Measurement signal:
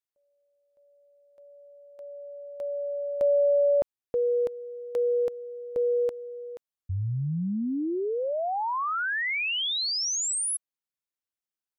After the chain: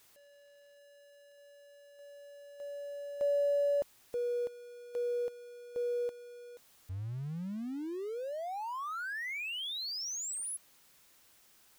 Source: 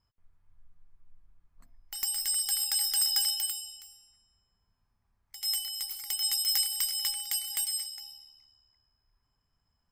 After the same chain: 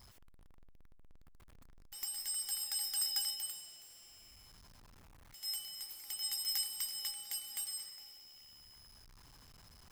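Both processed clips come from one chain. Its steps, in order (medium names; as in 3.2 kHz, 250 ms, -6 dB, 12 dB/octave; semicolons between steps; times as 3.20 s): jump at every zero crossing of -36 dBFS; upward expansion 1.5:1, over -40 dBFS; trim -8.5 dB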